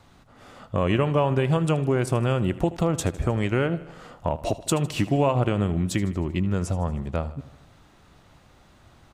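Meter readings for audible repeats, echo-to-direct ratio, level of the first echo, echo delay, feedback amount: 4, -15.0 dB, -17.0 dB, 78 ms, 59%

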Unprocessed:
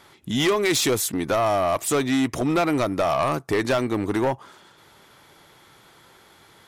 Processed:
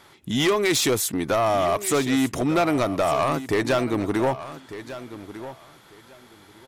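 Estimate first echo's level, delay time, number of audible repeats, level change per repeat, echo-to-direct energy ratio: -14.0 dB, 1199 ms, 2, -15.0 dB, -14.0 dB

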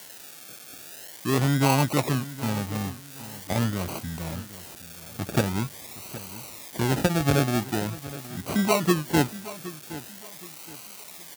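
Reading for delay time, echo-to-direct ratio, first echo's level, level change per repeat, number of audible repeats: 768 ms, -15.5 dB, -16.0 dB, -10.0 dB, 2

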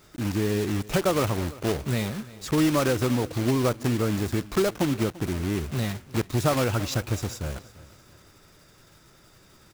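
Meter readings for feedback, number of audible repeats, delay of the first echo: 42%, 3, 342 ms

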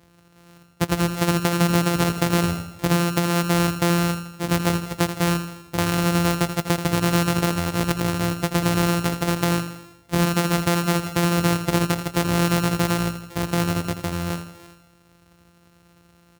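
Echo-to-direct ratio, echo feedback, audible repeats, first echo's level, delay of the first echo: -8.5 dB, 54%, 5, -10.0 dB, 82 ms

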